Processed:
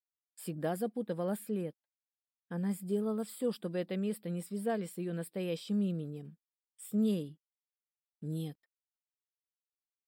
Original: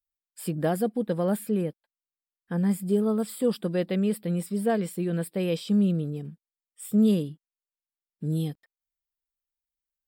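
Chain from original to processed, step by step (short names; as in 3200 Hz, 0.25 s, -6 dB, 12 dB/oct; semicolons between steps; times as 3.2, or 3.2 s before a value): gate with hold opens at -48 dBFS; low shelf 86 Hz -10 dB; gain -8 dB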